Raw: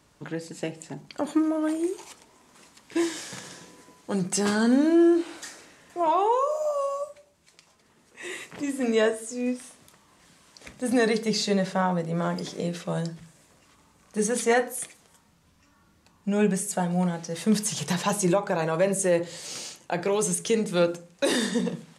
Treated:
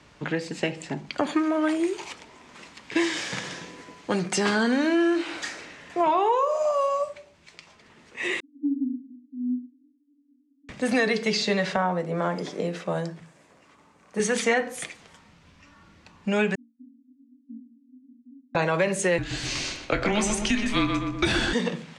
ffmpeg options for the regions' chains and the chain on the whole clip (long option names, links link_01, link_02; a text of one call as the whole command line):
ffmpeg -i in.wav -filter_complex "[0:a]asettb=1/sr,asplit=3[link_01][link_02][link_03];[link_01]atrim=end=8.404[link_04];[link_02]atrim=start=8.4:end=10.69,asetpts=PTS-STARTPTS,afade=type=in:duration=0.004:curve=qsin,afade=type=out:start_time=2.286:duration=0.004:curve=qsin,asuperpass=centerf=270:order=12:qfactor=4.7,aecho=1:1:6.4:0.38,atrim=end_sample=100989,aecho=1:1:113:0.0841,atrim=end_sample=100989[link_05];[link_03]atrim=start=10.686[link_06];[link_04][link_05]acrossfade=duration=0.004:curve1=hsin:curve2=qsin[link_07];[link_07][link_06]acrossfade=duration=0.004:curve1=qsin:curve2=hsin,asettb=1/sr,asplit=3[link_08][link_09][link_10];[link_08]atrim=end=11.764[link_11];[link_09]atrim=start=11.76:end=14.2,asetpts=PTS-STARTPTS,afade=type=in:duration=0.004:curve=qsin,afade=type=out:start_time=2.436:duration=0.004:curve=qsin,highpass=frequency=330:poles=1,equalizer=frequency=3600:width=0.46:gain=-10[link_12];[link_10]atrim=start=14.196[link_13];[link_11][link_12]acrossfade=duration=0.004:curve1=hsin:curve2=qsin[link_14];[link_14][link_13]acrossfade=duration=0.004:curve1=qsin:curve2=hsin,asettb=1/sr,asplit=3[link_15][link_16][link_17];[link_15]atrim=end=16.554[link_18];[link_16]atrim=start=16.55:end=18.55,asetpts=PTS-STARTPTS,afade=type=in:duration=0.004:curve=qsin,afade=type=out:start_time=1.996:duration=0.004:curve=qsin,asuperpass=centerf=260:order=20:qfactor=4.5,flanger=delay=20:depth=5.6:speed=1.2[link_19];[link_17]atrim=start=18.546[link_20];[link_18][link_19]acrossfade=duration=0.004:curve1=hsin:curve2=qsin[link_21];[link_21][link_20]acrossfade=duration=0.004:curve1=qsin:curve2=hsin,asettb=1/sr,asplit=3[link_22][link_23][link_24];[link_22]atrim=end=19.184[link_25];[link_23]atrim=start=19.18:end=21.53,asetpts=PTS-STARTPTS,afade=type=in:duration=0.004:curve=qsin,afade=type=out:start_time=2.346:duration=0.004:curve=qsin,afreqshift=-210,asplit=2[link_26][link_27];[link_27]adelay=24,volume=-11.5dB[link_28];[link_26][link_28]amix=inputs=2:normalize=0,atrim=end_sample=103635,asplit=2[link_29][link_30];[link_30]adelay=123,lowpass=frequency=2400:poles=1,volume=-5dB,asplit=2[link_31][link_32];[link_32]adelay=123,lowpass=frequency=2400:poles=1,volume=0.46,asplit=2[link_33][link_34];[link_34]adelay=123,lowpass=frequency=2400:poles=1,volume=0.46,asplit=2[link_35][link_36];[link_36]adelay=123,lowpass=frequency=2400:poles=1,volume=0.46,asplit=2[link_37][link_38];[link_38]adelay=123,lowpass=frequency=2400:poles=1,volume=0.46,asplit=2[link_39][link_40];[link_40]adelay=123,lowpass=frequency=2400:poles=1,volume=0.46[link_41];[link_29][link_31][link_33][link_35][link_37][link_39][link_41]amix=inputs=7:normalize=0,atrim=end_sample=103635[link_42];[link_24]atrim=start=21.526[link_43];[link_25][link_42]acrossfade=duration=0.004:curve1=hsin:curve2=qsin[link_44];[link_44][link_43]acrossfade=duration=0.004:curve1=qsin:curve2=hsin,lowpass=5400,equalizer=frequency=2300:width=1.4:gain=5,acrossover=split=290|850[link_45][link_46][link_47];[link_45]acompressor=threshold=-38dB:ratio=4[link_48];[link_46]acompressor=threshold=-34dB:ratio=4[link_49];[link_47]acompressor=threshold=-32dB:ratio=4[link_50];[link_48][link_49][link_50]amix=inputs=3:normalize=0,volume=7dB" out.wav